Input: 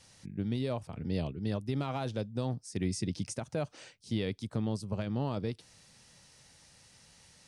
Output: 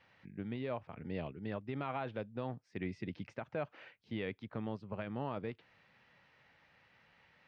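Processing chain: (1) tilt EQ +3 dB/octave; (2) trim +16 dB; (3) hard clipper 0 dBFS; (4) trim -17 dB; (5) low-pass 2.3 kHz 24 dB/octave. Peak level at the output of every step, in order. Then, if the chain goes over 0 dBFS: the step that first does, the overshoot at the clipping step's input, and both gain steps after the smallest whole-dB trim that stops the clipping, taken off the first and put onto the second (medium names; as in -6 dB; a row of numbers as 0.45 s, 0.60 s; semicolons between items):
-19.0 dBFS, -3.0 dBFS, -3.0 dBFS, -20.0 dBFS, -25.0 dBFS; nothing clips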